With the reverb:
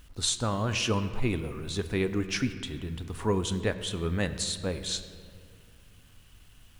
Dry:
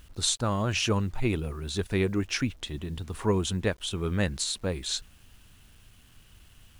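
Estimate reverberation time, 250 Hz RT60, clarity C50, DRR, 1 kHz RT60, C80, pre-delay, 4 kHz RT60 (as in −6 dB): 2.4 s, 2.8 s, 11.0 dB, 9.0 dB, 2.3 s, 12.0 dB, 4 ms, 1.4 s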